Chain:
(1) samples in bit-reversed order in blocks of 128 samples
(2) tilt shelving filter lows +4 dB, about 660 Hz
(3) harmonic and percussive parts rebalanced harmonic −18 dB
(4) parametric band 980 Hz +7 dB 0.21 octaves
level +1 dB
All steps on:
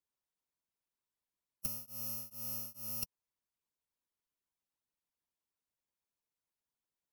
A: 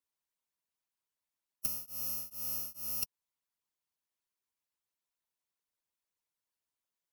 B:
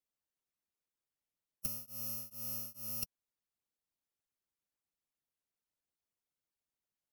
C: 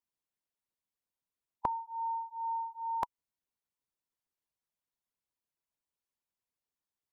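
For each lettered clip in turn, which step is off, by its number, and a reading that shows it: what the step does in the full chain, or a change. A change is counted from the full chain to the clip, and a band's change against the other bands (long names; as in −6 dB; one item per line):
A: 2, 125 Hz band −6.5 dB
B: 4, 1 kHz band −2.0 dB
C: 1, 1 kHz band +30.0 dB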